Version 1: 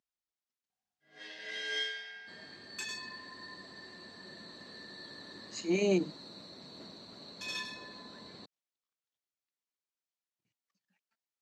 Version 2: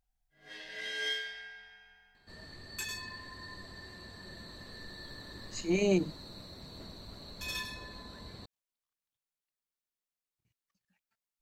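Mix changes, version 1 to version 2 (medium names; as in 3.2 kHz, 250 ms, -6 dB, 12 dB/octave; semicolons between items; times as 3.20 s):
first sound: entry -0.70 s; master: remove Chebyshev band-pass 220–6300 Hz, order 2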